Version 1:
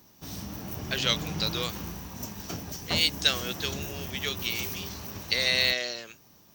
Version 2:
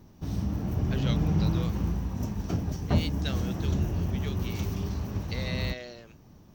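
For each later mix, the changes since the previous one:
speech -8.5 dB; master: add tilt -3.5 dB/oct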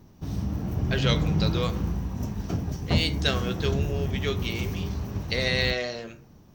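speech +8.5 dB; reverb: on, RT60 0.60 s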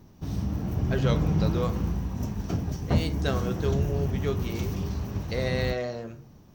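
speech: remove weighting filter D

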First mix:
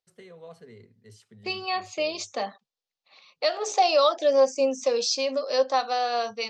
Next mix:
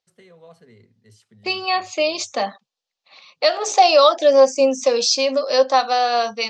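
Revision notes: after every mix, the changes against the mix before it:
second voice +8.0 dB; master: add bell 430 Hz -4.5 dB 0.3 oct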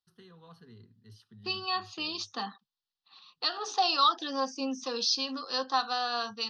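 second voice -6.5 dB; master: add fixed phaser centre 2200 Hz, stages 6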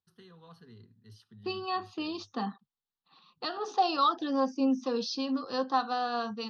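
second voice: add tilt -4 dB/oct

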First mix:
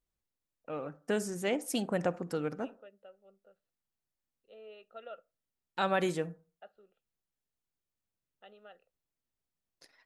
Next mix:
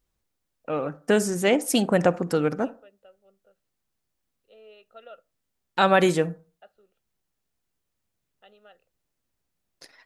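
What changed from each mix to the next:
first voice +11.0 dB; second voice: remove air absorption 150 m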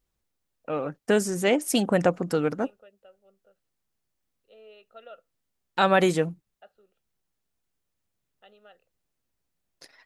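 reverb: off

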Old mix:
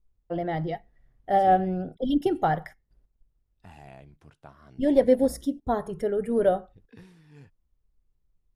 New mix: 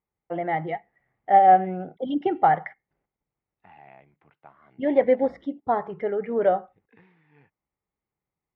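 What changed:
second voice -5.0 dB; master: add speaker cabinet 180–2900 Hz, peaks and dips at 250 Hz -4 dB, 820 Hz +8 dB, 1200 Hz +4 dB, 2100 Hz +10 dB

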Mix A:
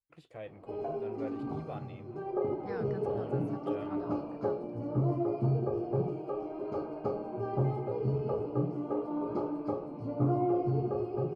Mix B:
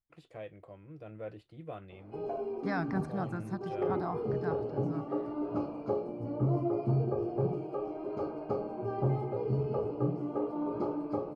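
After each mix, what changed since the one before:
second voice +10.5 dB; background: entry +1.45 s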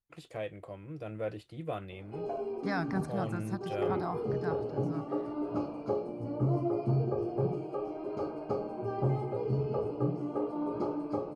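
first voice +6.0 dB; master: add high shelf 4700 Hz +10.5 dB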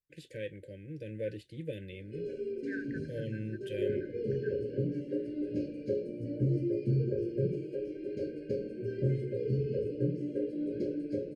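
second voice: add double band-pass 1200 Hz, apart 0.74 oct; master: add brick-wall FIR band-stop 590–1500 Hz

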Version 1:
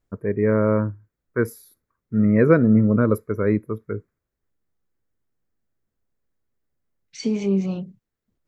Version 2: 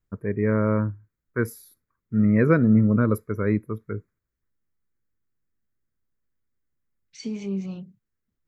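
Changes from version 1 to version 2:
second voice -6.0 dB; master: add bell 540 Hz -5.5 dB 1.8 oct

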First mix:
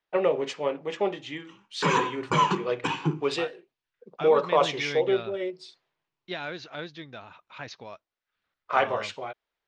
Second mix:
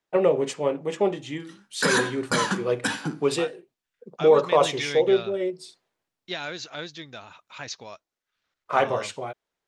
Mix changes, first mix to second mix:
first voice: add tilt -3 dB/oct; background: remove ripple EQ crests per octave 0.71, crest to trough 16 dB; master: remove air absorption 210 m

